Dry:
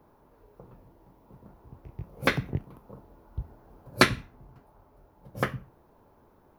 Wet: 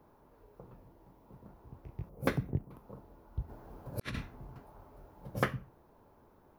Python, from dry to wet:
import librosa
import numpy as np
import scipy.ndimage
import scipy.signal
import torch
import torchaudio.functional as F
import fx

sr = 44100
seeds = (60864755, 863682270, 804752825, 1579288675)

y = fx.peak_eq(x, sr, hz=3000.0, db=-12.5, octaves=2.7, at=(2.09, 2.71))
y = fx.over_compress(y, sr, threshold_db=-34.0, ratio=-0.5, at=(3.48, 5.38), fade=0.02)
y = y * librosa.db_to_amplitude(-2.5)